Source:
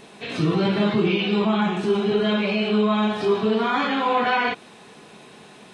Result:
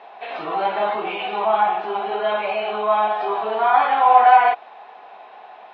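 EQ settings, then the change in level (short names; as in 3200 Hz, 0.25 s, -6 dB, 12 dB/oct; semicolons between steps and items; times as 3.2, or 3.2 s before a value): resonant high-pass 750 Hz, resonance Q 4.9; LPF 3300 Hz 12 dB/oct; air absorption 210 m; +1.0 dB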